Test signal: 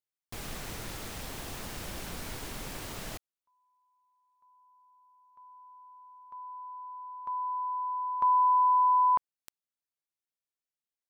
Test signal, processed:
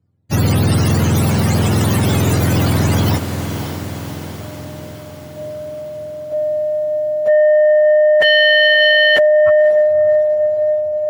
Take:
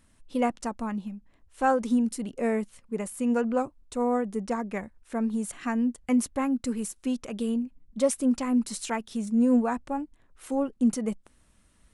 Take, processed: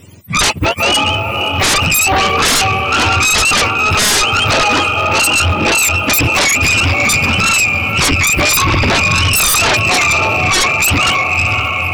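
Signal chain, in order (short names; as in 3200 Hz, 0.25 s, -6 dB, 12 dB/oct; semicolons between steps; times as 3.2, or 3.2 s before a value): spectrum mirrored in octaves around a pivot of 780 Hz; diffused feedback echo 0.559 s, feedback 62%, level -9 dB; sine folder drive 18 dB, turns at -12.5 dBFS; gain +4 dB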